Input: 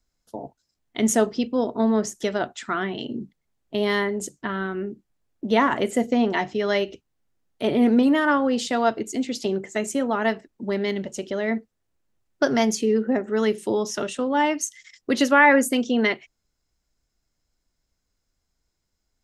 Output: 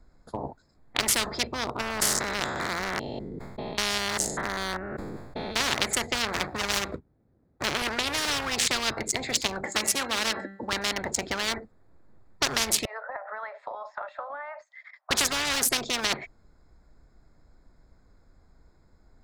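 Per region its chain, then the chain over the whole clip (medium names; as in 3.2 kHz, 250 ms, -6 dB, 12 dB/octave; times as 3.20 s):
1.81–5.61 s: spectrogram pixelated in time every 200 ms + decay stretcher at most 55 dB/s
6.15–7.82 s: median filter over 41 samples + high-pass 47 Hz
9.63–10.73 s: high-pass 120 Hz + comb 3.6 ms, depth 68% + de-hum 195.7 Hz, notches 21
12.85–15.11 s: Chebyshev high-pass 570 Hz, order 8 + compression 4:1, threshold -39 dBFS + tape spacing loss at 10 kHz 42 dB
whole clip: local Wiener filter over 15 samples; spectrum-flattening compressor 10:1; trim -2.5 dB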